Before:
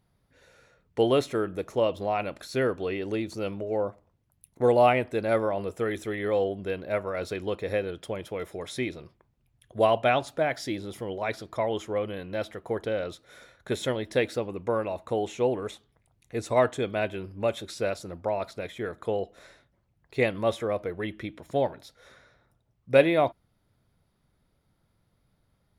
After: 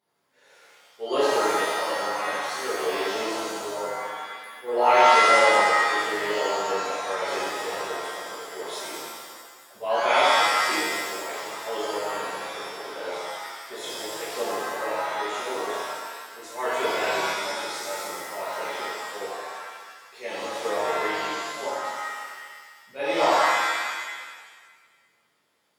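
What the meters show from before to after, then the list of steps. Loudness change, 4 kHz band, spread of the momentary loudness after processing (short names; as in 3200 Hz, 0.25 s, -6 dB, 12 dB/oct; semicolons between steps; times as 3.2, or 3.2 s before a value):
+3.5 dB, +10.0 dB, 17 LU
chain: HPF 410 Hz 12 dB/oct; auto swell 0.193 s; shimmer reverb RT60 1.5 s, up +7 st, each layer -2 dB, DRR -10.5 dB; gain -6.5 dB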